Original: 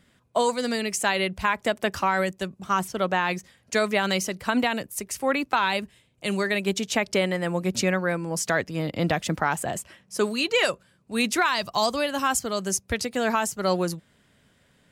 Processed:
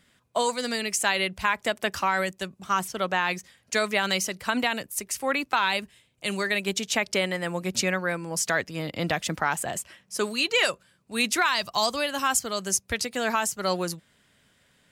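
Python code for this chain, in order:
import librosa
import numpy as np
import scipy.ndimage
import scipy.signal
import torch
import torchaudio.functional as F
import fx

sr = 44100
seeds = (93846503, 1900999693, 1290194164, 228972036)

y = fx.tilt_shelf(x, sr, db=-3.5, hz=970.0)
y = y * 10.0 ** (-1.5 / 20.0)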